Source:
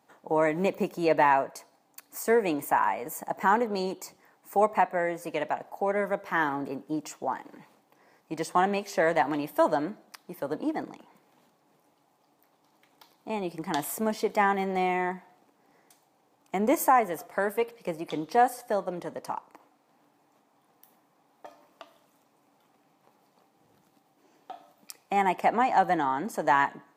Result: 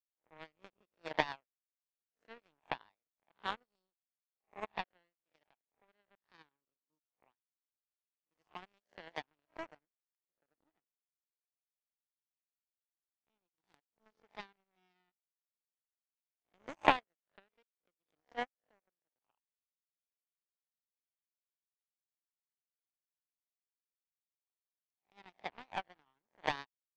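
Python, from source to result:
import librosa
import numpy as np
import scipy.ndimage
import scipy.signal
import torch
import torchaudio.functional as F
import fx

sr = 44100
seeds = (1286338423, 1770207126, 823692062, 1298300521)

y = fx.spec_swells(x, sr, rise_s=0.69)
y = scipy.signal.sosfilt(scipy.signal.ellip(4, 1.0, 40, 6300.0, 'lowpass', fs=sr, output='sos'), y)
y = fx.power_curve(y, sr, exponent=3.0)
y = fx.upward_expand(y, sr, threshold_db=-42.0, expansion=2.5)
y = y * librosa.db_to_amplitude(4.0)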